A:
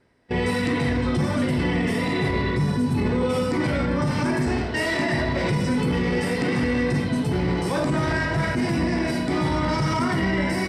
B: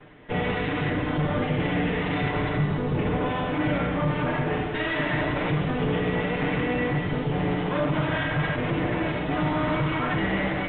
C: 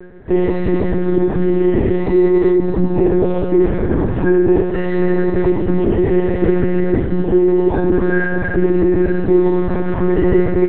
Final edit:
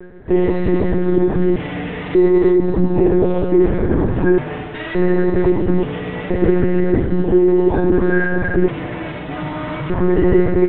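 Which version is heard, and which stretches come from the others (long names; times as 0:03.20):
C
0:01.56–0:02.15: punch in from B
0:04.38–0:04.95: punch in from B
0:05.83–0:06.30: punch in from B
0:08.68–0:09.90: punch in from B
not used: A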